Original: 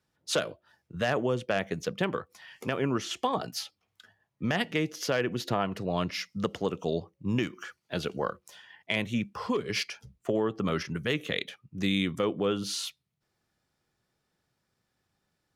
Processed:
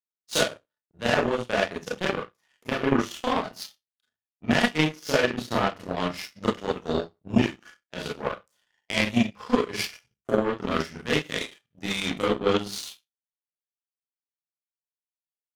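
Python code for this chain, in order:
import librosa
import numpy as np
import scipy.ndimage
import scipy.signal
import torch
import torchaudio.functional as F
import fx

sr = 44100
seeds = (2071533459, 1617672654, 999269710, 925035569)

y = fx.rev_schroeder(x, sr, rt60_s=0.35, comb_ms=26, drr_db=-6.0)
y = fx.power_curve(y, sr, exponent=2.0)
y = y * librosa.db_to_amplitude(5.5)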